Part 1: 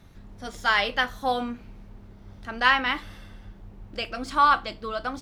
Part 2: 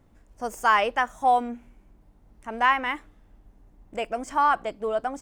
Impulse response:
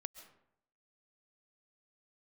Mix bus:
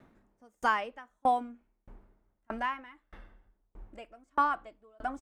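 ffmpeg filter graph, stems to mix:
-filter_complex "[0:a]acrossover=split=240 2300:gain=0.2 1 0.0891[a][b][c];[a][b][c]amix=inputs=3:normalize=0,volume=0.5dB[d];[1:a]highpass=f=110:w=0.5412,highpass=f=110:w=1.3066,equalizer=f=250:w=1:g=8.5,adelay=1.3,volume=-3.5dB,asplit=2[e][f];[f]apad=whole_len=229789[g];[d][g]sidechaincompress=threshold=-31dB:ratio=8:attack=16:release=109[h];[h][e]amix=inputs=2:normalize=0,asubboost=boost=9:cutoff=58,aeval=exprs='val(0)*pow(10,-37*if(lt(mod(1.6*n/s,1),2*abs(1.6)/1000),1-mod(1.6*n/s,1)/(2*abs(1.6)/1000),(mod(1.6*n/s,1)-2*abs(1.6)/1000)/(1-2*abs(1.6)/1000))/20)':c=same"

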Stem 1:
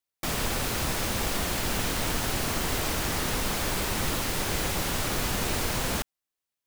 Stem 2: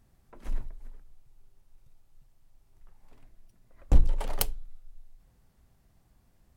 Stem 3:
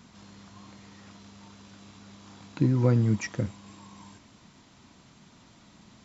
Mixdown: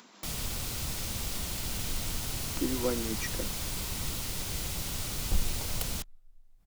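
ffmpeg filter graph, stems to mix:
-filter_complex "[0:a]bandreject=f=1.7k:w=15,acrossover=split=180|3000[a][b][c];[b]acompressor=threshold=-45dB:ratio=2.5[d];[a][d][c]amix=inputs=3:normalize=0,volume=-4dB[e];[1:a]adelay=1400,volume=-9dB[f];[2:a]highpass=f=270:w=0.5412,highpass=f=270:w=1.3066,volume=-3dB[g];[e][f][g]amix=inputs=3:normalize=0,acompressor=mode=upward:threshold=-50dB:ratio=2.5"

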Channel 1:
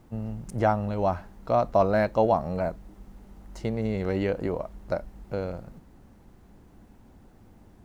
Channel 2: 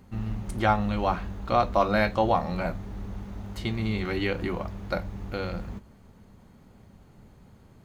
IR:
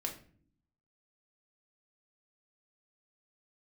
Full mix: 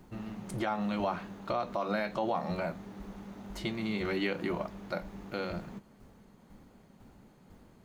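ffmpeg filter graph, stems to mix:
-filter_complex "[0:a]acompressor=threshold=-31dB:ratio=6,aeval=exprs='val(0)*pow(10,-20*if(lt(mod(2*n/s,1),2*abs(2)/1000),1-mod(2*n/s,1)/(2*abs(2)/1000),(mod(2*n/s,1)-2*abs(2)/1000)/(1-2*abs(2)/1000))/20)':c=same,volume=-1dB[a];[1:a]highpass=f=150:w=0.5412,highpass=f=150:w=1.3066,volume=-3dB[b];[a][b]amix=inputs=2:normalize=0,alimiter=limit=-21dB:level=0:latency=1:release=106"

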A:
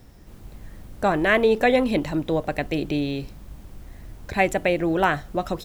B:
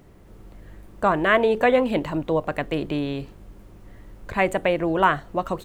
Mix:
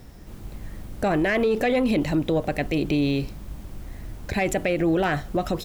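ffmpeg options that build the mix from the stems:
-filter_complex "[0:a]acontrast=85,volume=-3.5dB[a];[1:a]volume=-9dB[b];[a][b]amix=inputs=2:normalize=0,alimiter=limit=-15dB:level=0:latency=1:release=42"

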